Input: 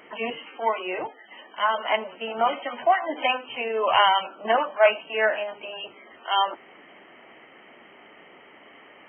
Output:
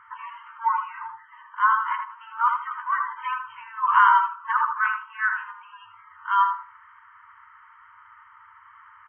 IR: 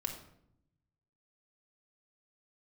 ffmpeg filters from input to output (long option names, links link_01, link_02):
-filter_complex "[0:a]highshelf=frequency=1900:width_type=q:width=3:gain=-11,asplit=2[link_01][link_02];[link_02]adelay=80,lowpass=frequency=1300:poles=1,volume=-3dB,asplit=2[link_03][link_04];[link_04]adelay=80,lowpass=frequency=1300:poles=1,volume=0.28,asplit=2[link_05][link_06];[link_06]adelay=80,lowpass=frequency=1300:poles=1,volume=0.28,asplit=2[link_07][link_08];[link_08]adelay=80,lowpass=frequency=1300:poles=1,volume=0.28[link_09];[link_01][link_03][link_05][link_07][link_09]amix=inputs=5:normalize=0,afftfilt=real='re*(1-between(b*sr/4096,110,890))':imag='im*(1-between(b*sr/4096,110,890))':win_size=4096:overlap=0.75"